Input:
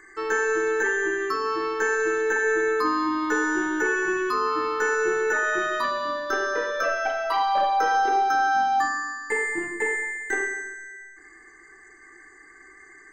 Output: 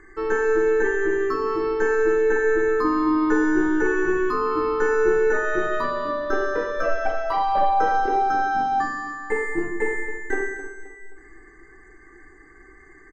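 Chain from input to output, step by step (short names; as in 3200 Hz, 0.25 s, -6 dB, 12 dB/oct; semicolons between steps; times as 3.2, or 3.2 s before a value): tilt -3.5 dB/oct; on a send: feedback echo 0.263 s, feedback 42%, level -13 dB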